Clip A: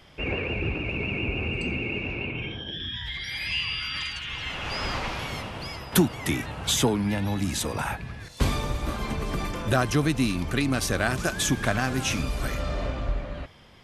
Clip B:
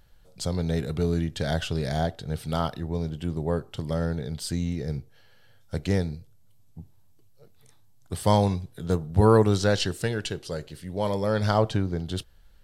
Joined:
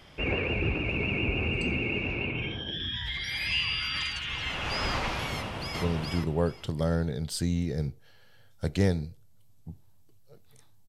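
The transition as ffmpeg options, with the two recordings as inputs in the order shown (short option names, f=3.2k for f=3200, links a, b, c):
-filter_complex "[0:a]apad=whole_dur=10.88,atrim=end=10.88,atrim=end=5.822[a];[1:a]atrim=start=2.918:end=7.98[b];[a][b]acrossfade=d=0.004:c1=hsin:c2=hsin,asplit=2[c][d];[d]afade=t=in:st=5.32:d=0.01,afade=t=out:st=5.82:d=0.01,aecho=0:1:420|840|1260:0.891251|0.17825|0.03565[e];[c][e]amix=inputs=2:normalize=0"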